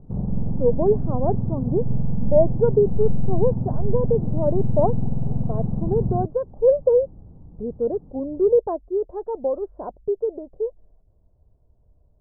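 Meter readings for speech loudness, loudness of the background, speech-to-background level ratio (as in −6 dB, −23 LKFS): −23.5 LKFS, −26.5 LKFS, 3.0 dB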